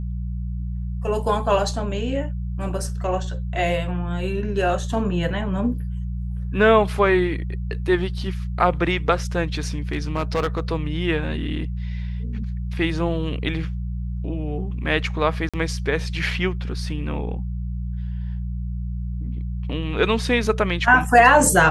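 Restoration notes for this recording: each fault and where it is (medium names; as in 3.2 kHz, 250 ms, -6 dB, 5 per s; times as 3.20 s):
hum 60 Hz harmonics 3 -27 dBFS
9.91–10.60 s: clipped -17 dBFS
15.49–15.54 s: dropout 46 ms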